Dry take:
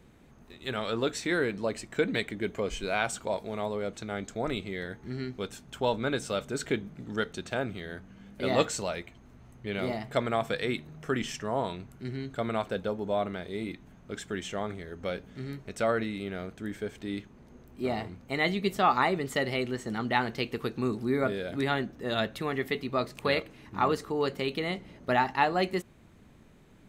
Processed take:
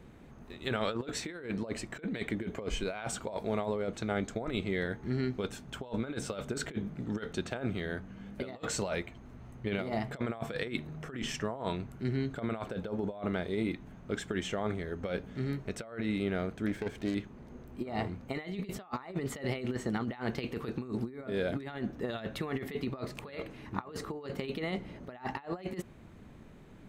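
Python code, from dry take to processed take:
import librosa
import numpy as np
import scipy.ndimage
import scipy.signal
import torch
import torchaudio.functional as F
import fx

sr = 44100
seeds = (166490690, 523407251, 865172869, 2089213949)

y = fx.self_delay(x, sr, depth_ms=0.22, at=(16.66, 17.15))
y = fx.high_shelf(y, sr, hz=3100.0, db=-7.0)
y = fx.over_compress(y, sr, threshold_db=-34.0, ratio=-0.5)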